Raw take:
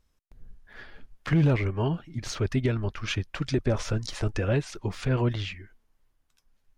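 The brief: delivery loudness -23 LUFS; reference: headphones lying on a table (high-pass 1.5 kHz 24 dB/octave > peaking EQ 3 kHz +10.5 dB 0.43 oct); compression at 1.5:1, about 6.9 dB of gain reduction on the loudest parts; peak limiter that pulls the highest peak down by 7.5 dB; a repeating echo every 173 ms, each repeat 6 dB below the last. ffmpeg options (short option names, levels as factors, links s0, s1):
-af "acompressor=threshold=0.0126:ratio=1.5,alimiter=level_in=1.5:limit=0.0631:level=0:latency=1,volume=0.668,highpass=f=1500:w=0.5412,highpass=f=1500:w=1.3066,equalizer=f=3000:t=o:w=0.43:g=10.5,aecho=1:1:173|346|519|692|865|1038:0.501|0.251|0.125|0.0626|0.0313|0.0157,volume=7.08"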